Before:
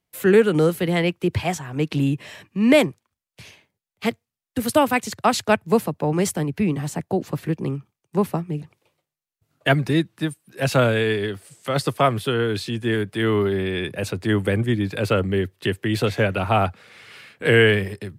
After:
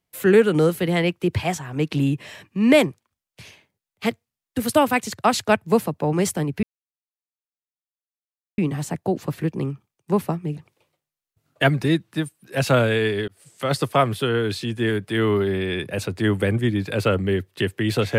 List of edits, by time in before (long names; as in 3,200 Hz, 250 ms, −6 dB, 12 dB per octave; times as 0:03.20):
0:06.63: splice in silence 1.95 s
0:11.33–0:11.71: fade in equal-power